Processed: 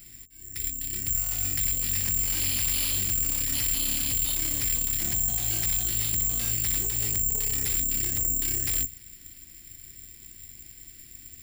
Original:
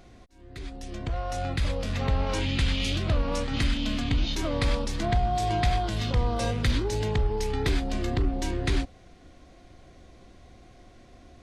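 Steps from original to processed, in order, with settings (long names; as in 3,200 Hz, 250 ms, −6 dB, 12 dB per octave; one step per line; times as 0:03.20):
flat-topped bell 820 Hz −14 dB
mains-hum notches 60/120/180/240/300/360/420 Hz
in parallel at −11.5 dB: sine wavefolder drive 14 dB, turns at −12 dBFS
on the sum: guitar amp tone stack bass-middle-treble 5-5-5
tube saturation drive 37 dB, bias 0.65
bad sample-rate conversion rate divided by 6×, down filtered, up zero stuff
level +6.5 dB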